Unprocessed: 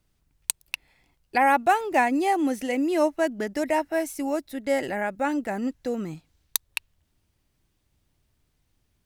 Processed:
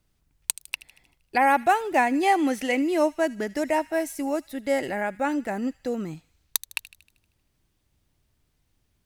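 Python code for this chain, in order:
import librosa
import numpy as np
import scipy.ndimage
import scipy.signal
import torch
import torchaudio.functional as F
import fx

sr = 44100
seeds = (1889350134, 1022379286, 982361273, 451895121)

y = fx.peak_eq(x, sr, hz=2300.0, db=6.0, octaves=2.9, at=(2.23, 2.82))
y = fx.echo_wet_highpass(y, sr, ms=78, feedback_pct=53, hz=2100.0, wet_db=-16.5)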